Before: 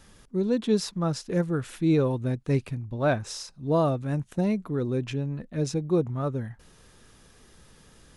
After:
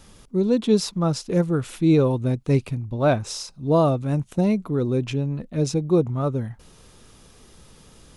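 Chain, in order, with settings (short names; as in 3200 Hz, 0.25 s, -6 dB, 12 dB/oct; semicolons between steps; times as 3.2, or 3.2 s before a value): bell 1700 Hz -7 dB 0.39 oct; gain +5 dB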